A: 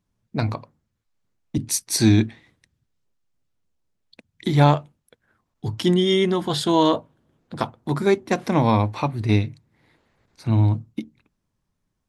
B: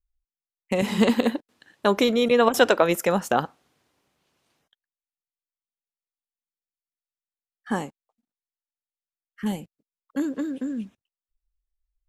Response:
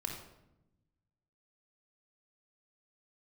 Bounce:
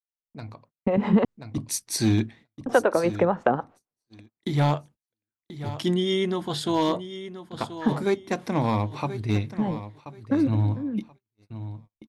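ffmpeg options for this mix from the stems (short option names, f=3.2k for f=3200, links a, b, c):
-filter_complex "[0:a]asoftclip=type=hard:threshold=-9dB,volume=-17.5dB,asplit=3[a][b][c];[b]volume=-12.5dB[d];[1:a]lowpass=1.3k,acompressor=threshold=-24dB:ratio=4,acrossover=split=450[e][f];[e]aeval=exprs='val(0)*(1-0.7/2+0.7/2*cos(2*PI*7.1*n/s))':c=same[g];[f]aeval=exprs='val(0)*(1-0.7/2-0.7/2*cos(2*PI*7.1*n/s))':c=same[h];[g][h]amix=inputs=2:normalize=0,adelay=150,volume=-1.5dB,asplit=3[i][j][k];[i]atrim=end=1.25,asetpts=PTS-STARTPTS,afade=t=out:st=1.246:d=0.004:c=hsin[l];[j]atrim=start=1.25:end=2.66,asetpts=PTS-STARTPTS,volume=0[m];[k]atrim=start=2.66,asetpts=PTS-STARTPTS,afade=t=in:d=0.004:c=hsin[n];[l][m][n]concat=n=3:v=0:a=1[o];[c]apad=whole_len=539361[p];[o][p]sidechaincompress=threshold=-46dB:ratio=8:attack=16:release=326[q];[d]aecho=0:1:1031|2062|3093:1|0.19|0.0361[r];[a][q][r]amix=inputs=3:normalize=0,agate=range=-32dB:threshold=-58dB:ratio=16:detection=peak,dynaudnorm=f=550:g=3:m=12dB"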